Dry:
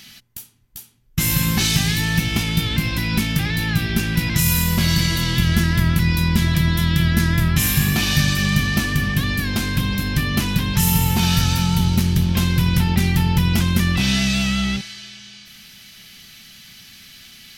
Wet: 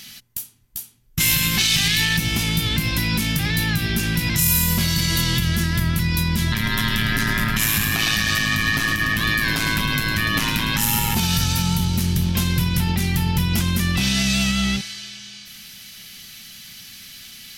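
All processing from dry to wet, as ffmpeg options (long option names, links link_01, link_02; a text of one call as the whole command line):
ffmpeg -i in.wav -filter_complex "[0:a]asettb=1/sr,asplit=3[link_01][link_02][link_03];[link_01]atrim=end=1.204[link_04];[link_02]atrim=start=1.2:end=2.17,asetpts=PTS-STARTPTS,afade=type=in:duration=0.004:curve=qsin,afade=type=out:start_time=0.966:duration=0.004:curve=qsin,aeval=exprs='if(lt(val(0),0),0.708*val(0),val(0))':channel_layout=same,equalizer=frequency=2800:width=0.66:gain=10.5[link_05];[link_03]atrim=start=2.166[link_06];[link_04][link_05]acrossfade=duration=0.004:curve1=hsin:curve2=qsin[link_07];[link_07][link_06]acrossfade=duration=0.004:curve1=qsin:curve2=hsin,asettb=1/sr,asplit=3[link_08][link_09][link_10];[link_08]atrim=end=6.524[link_11];[link_09]atrim=start=6.52:end=11.15,asetpts=PTS-STARTPTS,afade=type=in:duration=0.004:curve=qsin,afade=type=out:start_time=4.626:duration=0.004:curve=qsin,equalizer=frequency=1600:width_type=o:width=2.9:gain=9.5,aeval=exprs='val(0)*sin(2*PI*55*n/s)':channel_layout=same,aecho=1:1:106:0.335,atrim=end_sample=204183[link_12];[link_10]atrim=start=11.146[link_13];[link_11][link_12]acrossfade=duration=0.004:curve1=hsin:curve2=qsin[link_14];[link_14][link_13]acrossfade=duration=0.004:curve1=qsin:curve2=hsin,alimiter=limit=-11dB:level=0:latency=1:release=93,equalizer=frequency=12000:width_type=o:width=2:gain=6.5" out.wav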